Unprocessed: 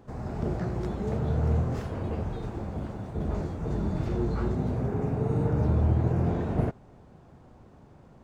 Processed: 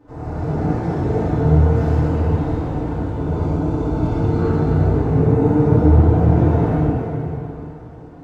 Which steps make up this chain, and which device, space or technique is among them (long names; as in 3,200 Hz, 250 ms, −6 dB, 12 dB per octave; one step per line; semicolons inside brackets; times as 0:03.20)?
0:02.96–0:04.25: notch filter 1,800 Hz, Q 5.1
swimming-pool hall (convolution reverb RT60 3.2 s, pre-delay 39 ms, DRR −7 dB; high-shelf EQ 3,900 Hz −7.5 dB)
feedback delay network reverb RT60 0.44 s, low-frequency decay 0.85×, high-frequency decay 0.65×, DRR −7.5 dB
level −4.5 dB